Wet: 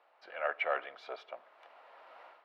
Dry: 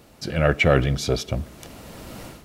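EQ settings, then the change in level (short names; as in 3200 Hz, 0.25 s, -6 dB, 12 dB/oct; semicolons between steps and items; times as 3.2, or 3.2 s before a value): HPF 720 Hz 24 dB/oct; air absorption 390 m; high shelf 2600 Hz -11.5 dB; -4.0 dB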